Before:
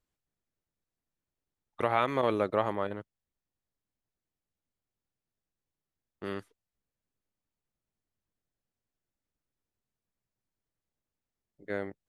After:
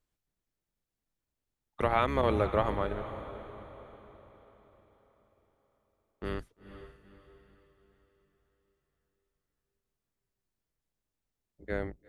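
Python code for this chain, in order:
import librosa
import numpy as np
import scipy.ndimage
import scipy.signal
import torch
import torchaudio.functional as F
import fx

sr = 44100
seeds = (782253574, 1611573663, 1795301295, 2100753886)

y = fx.octave_divider(x, sr, octaves=2, level_db=1.0)
y = fx.echo_diffused(y, sr, ms=469, feedback_pct=45, wet_db=-12)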